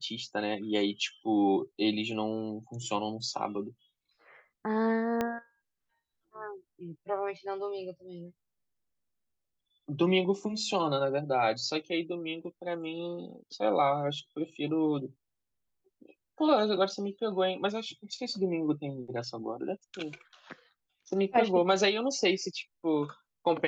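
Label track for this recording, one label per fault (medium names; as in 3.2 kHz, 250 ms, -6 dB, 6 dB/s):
5.210000	5.210000	pop -16 dBFS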